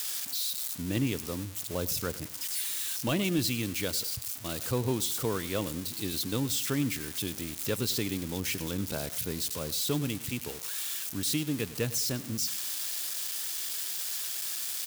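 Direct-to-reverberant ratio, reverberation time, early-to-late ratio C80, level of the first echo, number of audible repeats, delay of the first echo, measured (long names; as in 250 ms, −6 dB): no reverb audible, no reverb audible, no reverb audible, −18.0 dB, 2, 101 ms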